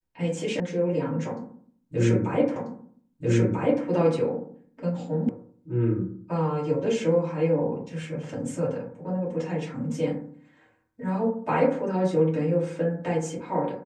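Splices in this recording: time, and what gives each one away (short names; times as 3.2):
0.6 sound cut off
2.56 repeat of the last 1.29 s
5.29 sound cut off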